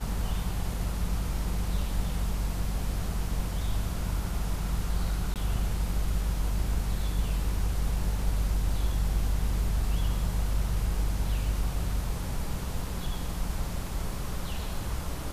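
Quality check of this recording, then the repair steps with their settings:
0:05.34–0:05.36: drop-out 18 ms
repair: repair the gap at 0:05.34, 18 ms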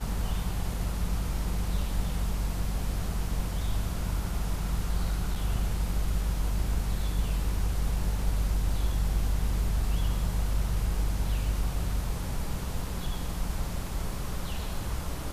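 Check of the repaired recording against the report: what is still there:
none of them is left

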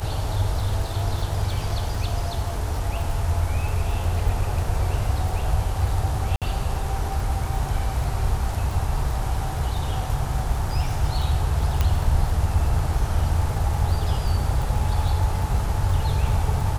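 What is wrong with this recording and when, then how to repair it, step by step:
surface crackle 41 per second −29 dBFS
0:06.36–0:06.42: drop-out 57 ms
0:11.81: click −8 dBFS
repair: click removal
repair the gap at 0:06.36, 57 ms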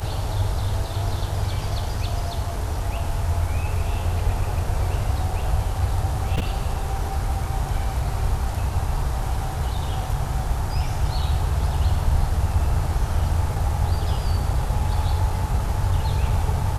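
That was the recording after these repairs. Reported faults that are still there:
none of them is left

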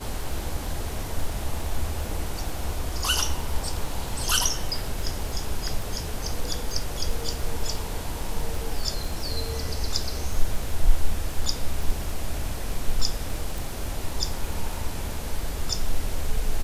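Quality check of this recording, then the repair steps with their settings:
surface crackle 22 per second −30 dBFS
0:13.58: click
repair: click removal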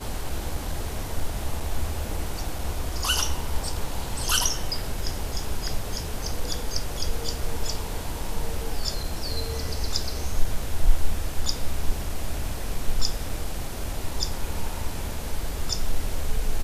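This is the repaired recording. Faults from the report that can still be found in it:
none of them is left

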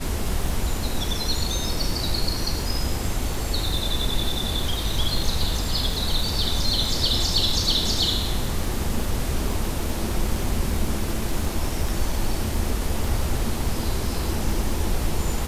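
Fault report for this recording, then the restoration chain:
surface crackle 59 per second −30 dBFS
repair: click removal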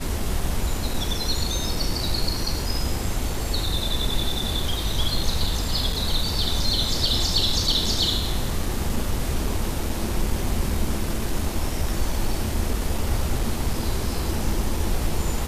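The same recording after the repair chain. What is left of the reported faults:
none of them is left

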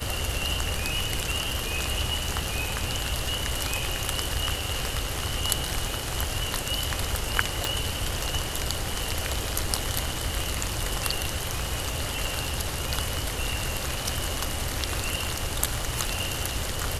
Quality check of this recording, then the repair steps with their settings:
surface crackle 52 per second −35 dBFS
0:07.65: click −9 dBFS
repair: click removal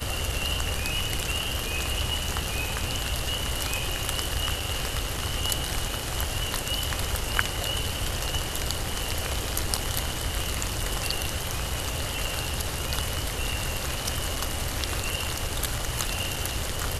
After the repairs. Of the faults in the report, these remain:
none of them is left

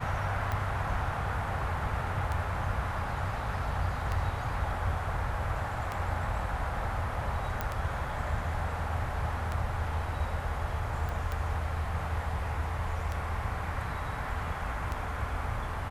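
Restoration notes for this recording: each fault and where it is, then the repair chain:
scratch tick 33 1/3 rpm −20 dBFS
0:07.61: click −17 dBFS
0:11.09: click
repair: click removal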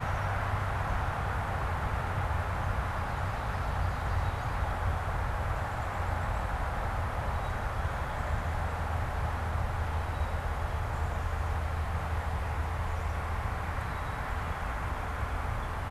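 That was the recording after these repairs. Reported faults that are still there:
none of them is left

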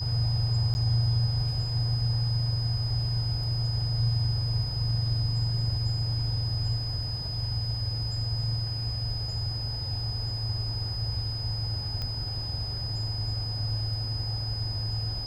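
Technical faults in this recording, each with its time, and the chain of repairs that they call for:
whistle 5,000 Hz −34 dBFS
0:00.74–0:00.75: drop-out 10 ms
0:12.02: click −21 dBFS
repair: click removal
notch filter 5,000 Hz, Q 30
repair the gap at 0:00.74, 10 ms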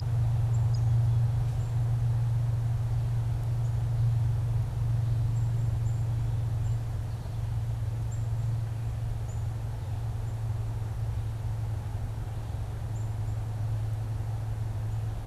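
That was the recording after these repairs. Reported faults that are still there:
none of them is left

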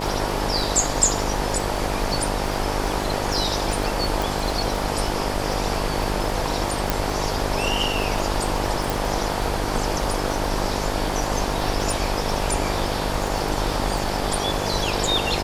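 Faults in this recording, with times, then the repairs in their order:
mains buzz 50 Hz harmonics 19 −28 dBFS
surface crackle 35 per second −26 dBFS
0:04.22: click
0:06.90: click
0:08.90: click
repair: click removal
hum removal 50 Hz, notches 19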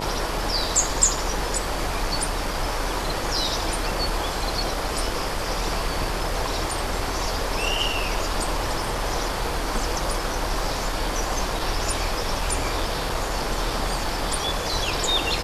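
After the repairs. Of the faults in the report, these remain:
none of them is left

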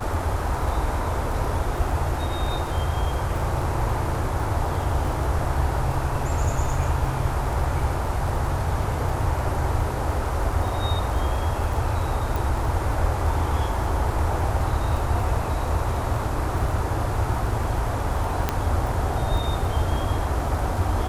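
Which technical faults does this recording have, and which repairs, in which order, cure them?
surface crackle 20 per second −29 dBFS
0:12.36: click
0:18.49: click −7 dBFS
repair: click removal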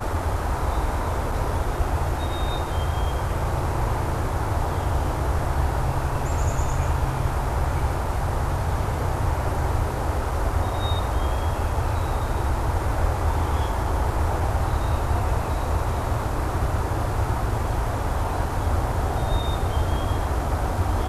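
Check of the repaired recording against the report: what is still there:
none of them is left

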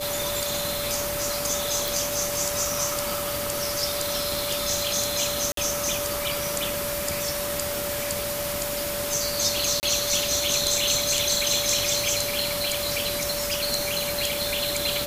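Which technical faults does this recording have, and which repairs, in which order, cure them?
surface crackle 27 per second −30 dBFS
whistle 580 Hz −30 dBFS
0:01.88: click
0:05.52–0:05.57: drop-out 53 ms
0:09.80–0:09.83: drop-out 29 ms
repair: click removal
notch filter 580 Hz, Q 30
repair the gap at 0:05.52, 53 ms
repair the gap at 0:09.80, 29 ms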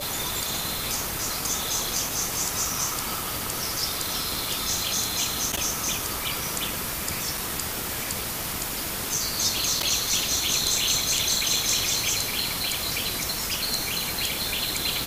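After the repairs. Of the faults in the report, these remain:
none of them is left

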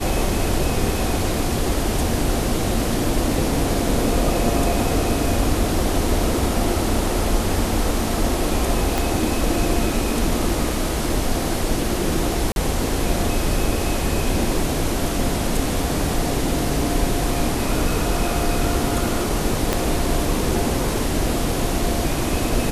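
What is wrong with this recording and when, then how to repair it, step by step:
0:08.98: click
0:12.52–0:12.56: drop-out 41 ms
0:19.73: click −5 dBFS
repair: click removal
repair the gap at 0:12.52, 41 ms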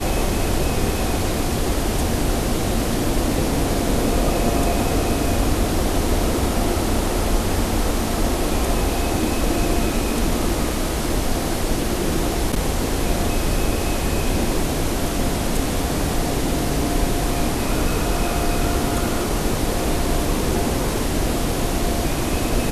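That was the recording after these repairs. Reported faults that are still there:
0:08.98: click
0:19.73: click

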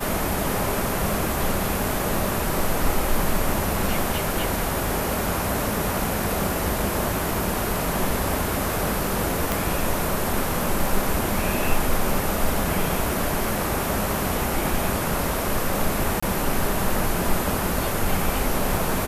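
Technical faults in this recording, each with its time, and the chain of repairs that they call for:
0:09.52: click
0:16.20–0:16.23: drop-out 25 ms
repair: click removal
repair the gap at 0:16.20, 25 ms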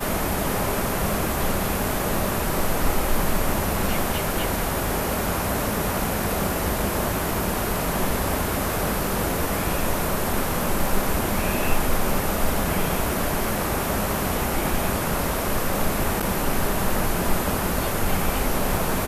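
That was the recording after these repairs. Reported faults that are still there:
none of them is left

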